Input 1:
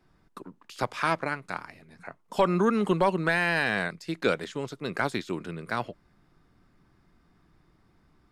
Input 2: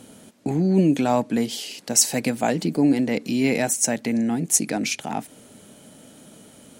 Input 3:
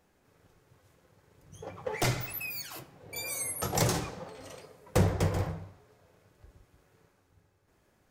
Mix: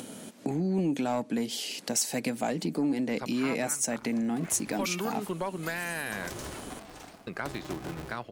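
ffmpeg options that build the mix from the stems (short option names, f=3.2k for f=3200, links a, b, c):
-filter_complex "[0:a]adelay=2400,volume=-6dB,asplit=3[a][b][c];[a]atrim=end=6.3,asetpts=PTS-STARTPTS,afade=t=out:st=6.296:d=0.004:c=hsin[d];[b]atrim=start=6.3:end=7.27,asetpts=PTS-STARTPTS,volume=0[e];[c]atrim=start=7.27,asetpts=PTS-STARTPTS,afade=t=in:d=0.004:c=hsin[f];[d][e][f]concat=n=3:v=0:a=1[g];[1:a]highpass=130,acompressor=mode=upward:threshold=-44dB:ratio=2.5,volume=-1dB[h];[2:a]acompressor=threshold=-32dB:ratio=12,aeval=exprs='val(0)*sgn(sin(2*PI*230*n/s))':c=same,adelay=2500,volume=-4.5dB[i];[g][h][i]amix=inputs=3:normalize=0,aeval=exprs='0.596*(cos(1*acos(clip(val(0)/0.596,-1,1)))-cos(1*PI/2))+0.075*(cos(5*acos(clip(val(0)/0.596,-1,1)))-cos(5*PI/2))':c=same,acompressor=threshold=-35dB:ratio=2"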